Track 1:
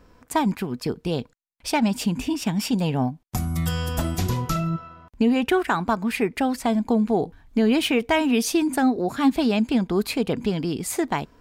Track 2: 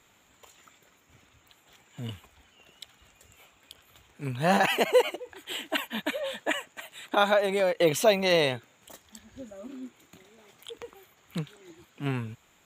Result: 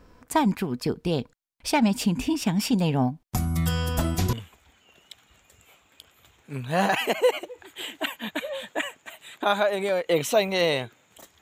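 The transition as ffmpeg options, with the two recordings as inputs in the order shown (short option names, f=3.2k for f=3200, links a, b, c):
-filter_complex "[0:a]apad=whole_dur=11.41,atrim=end=11.41,atrim=end=4.332[a];[1:a]atrim=start=2.038:end=9.12[b];[a][b]acrossfade=d=0.004:c1=hsin:c2=hsin"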